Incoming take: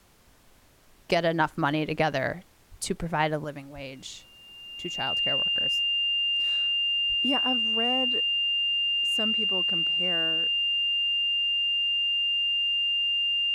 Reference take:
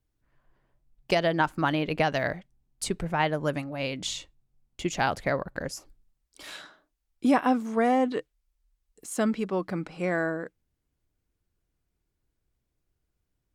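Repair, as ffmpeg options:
-filter_complex "[0:a]bandreject=f=2.8k:w=30,asplit=3[a][b][c];[a]afade=t=out:st=2.7:d=0.02[d];[b]highpass=f=140:w=0.5412,highpass=f=140:w=1.3066,afade=t=in:st=2.7:d=0.02,afade=t=out:st=2.82:d=0.02[e];[c]afade=t=in:st=2.82:d=0.02[f];[d][e][f]amix=inputs=3:normalize=0,asplit=3[g][h][i];[g]afade=t=out:st=3.74:d=0.02[j];[h]highpass=f=140:w=0.5412,highpass=f=140:w=1.3066,afade=t=in:st=3.74:d=0.02,afade=t=out:st=3.86:d=0.02[k];[i]afade=t=in:st=3.86:d=0.02[l];[j][k][l]amix=inputs=3:normalize=0,asplit=3[m][n][o];[m]afade=t=out:st=7.08:d=0.02[p];[n]highpass=f=140:w=0.5412,highpass=f=140:w=1.3066,afade=t=in:st=7.08:d=0.02,afade=t=out:st=7.2:d=0.02[q];[o]afade=t=in:st=7.2:d=0.02[r];[p][q][r]amix=inputs=3:normalize=0,agate=range=-21dB:threshold=-47dB,asetnsamples=n=441:p=0,asendcmd='3.44 volume volume 8dB',volume=0dB"

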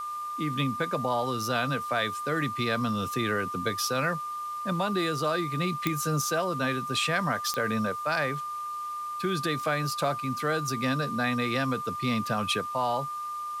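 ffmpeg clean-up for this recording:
-af "adeclick=t=4,bandreject=f=1.2k:w=30,afwtdn=0.0025"

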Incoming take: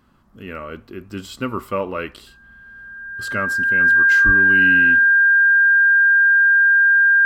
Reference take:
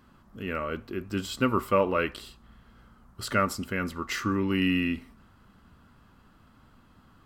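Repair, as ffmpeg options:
-filter_complex "[0:a]bandreject=f=1.6k:w=30,asplit=3[a][b][c];[a]afade=t=out:st=4.25:d=0.02[d];[b]highpass=f=140:w=0.5412,highpass=f=140:w=1.3066,afade=t=in:st=4.25:d=0.02,afade=t=out:st=4.37:d=0.02[e];[c]afade=t=in:st=4.37:d=0.02[f];[d][e][f]amix=inputs=3:normalize=0"

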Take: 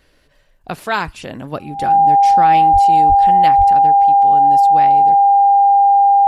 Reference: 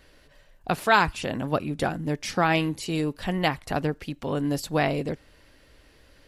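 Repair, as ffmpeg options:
-filter_complex "[0:a]bandreject=f=800:w=30,asplit=3[a][b][c];[a]afade=t=out:st=2.72:d=0.02[d];[b]highpass=f=140:w=0.5412,highpass=f=140:w=1.3066,afade=t=in:st=2.72:d=0.02,afade=t=out:st=2.84:d=0.02[e];[c]afade=t=in:st=2.84:d=0.02[f];[d][e][f]amix=inputs=3:normalize=0,asplit=3[g][h][i];[g]afade=t=out:st=3.08:d=0.02[j];[h]highpass=f=140:w=0.5412,highpass=f=140:w=1.3066,afade=t=in:st=3.08:d=0.02,afade=t=out:st=3.2:d=0.02[k];[i]afade=t=in:st=3.2:d=0.02[l];[j][k][l]amix=inputs=3:normalize=0,asplit=3[m][n][o];[m]afade=t=out:st=3.57:d=0.02[p];[n]highpass=f=140:w=0.5412,highpass=f=140:w=1.3066,afade=t=in:st=3.57:d=0.02,afade=t=out:st=3.69:d=0.02[q];[o]afade=t=in:st=3.69:d=0.02[r];[p][q][r]amix=inputs=3:normalize=0,asetnsamples=n=441:p=0,asendcmd='3.7 volume volume 4dB',volume=0dB"

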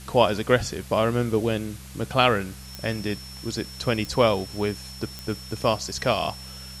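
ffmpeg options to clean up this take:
-af "adeclick=t=4,bandreject=f=64.9:t=h:w=4,bandreject=f=129.8:t=h:w=4,bandreject=f=194.7:t=h:w=4,bandreject=f=5.4k:w=30,afwtdn=0.0056"

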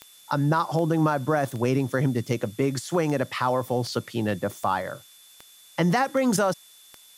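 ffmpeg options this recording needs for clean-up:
-af "adeclick=t=4,bandreject=f=3.5k:w=30,afftdn=nr=19:nf=-52"

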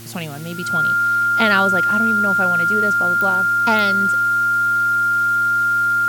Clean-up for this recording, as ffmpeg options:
-af "adeclick=t=4,bandreject=f=115:t=h:w=4,bandreject=f=230:t=h:w=4,bandreject=f=345:t=h:w=4,bandreject=f=1.4k:w=30,afwtdn=0.01"

